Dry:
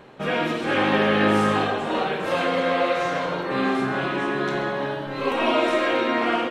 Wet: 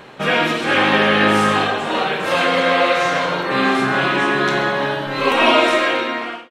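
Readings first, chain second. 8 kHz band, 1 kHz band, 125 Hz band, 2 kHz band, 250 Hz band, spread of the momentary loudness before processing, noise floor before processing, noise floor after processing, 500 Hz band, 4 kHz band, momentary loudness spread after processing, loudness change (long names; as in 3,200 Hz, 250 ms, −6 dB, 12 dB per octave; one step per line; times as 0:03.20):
+10.0 dB, +6.5 dB, +4.0 dB, +8.5 dB, +3.0 dB, 7 LU, −30 dBFS, −33 dBFS, +4.0 dB, +9.5 dB, 6 LU, +6.5 dB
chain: fade-out on the ending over 1.03 s
parametric band 150 Hz +2.5 dB 1.6 octaves
speech leveller within 4 dB 2 s
tilt shelving filter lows −4.5 dB, about 790 Hz
level +5.5 dB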